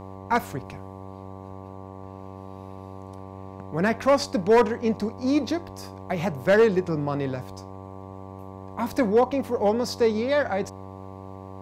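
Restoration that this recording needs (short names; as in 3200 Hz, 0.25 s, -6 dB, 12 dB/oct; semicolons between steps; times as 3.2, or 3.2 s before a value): clip repair -12.5 dBFS; de-hum 95.8 Hz, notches 12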